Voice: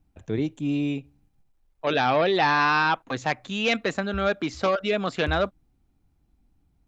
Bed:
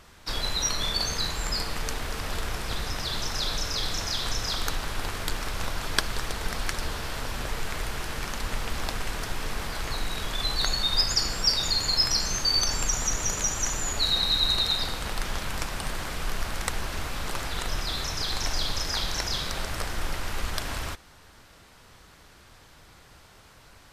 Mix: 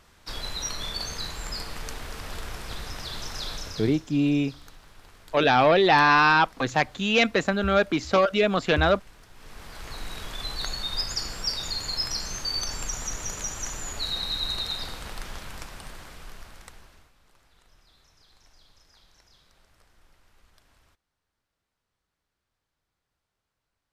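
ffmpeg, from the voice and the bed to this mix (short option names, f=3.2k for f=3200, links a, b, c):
-filter_complex "[0:a]adelay=3500,volume=3dB[a];[1:a]volume=10dB,afade=t=out:st=3.51:d=0.52:silence=0.16788,afade=t=in:st=9.32:d=0.77:silence=0.177828,afade=t=out:st=14.92:d=2.21:silence=0.0562341[b];[a][b]amix=inputs=2:normalize=0"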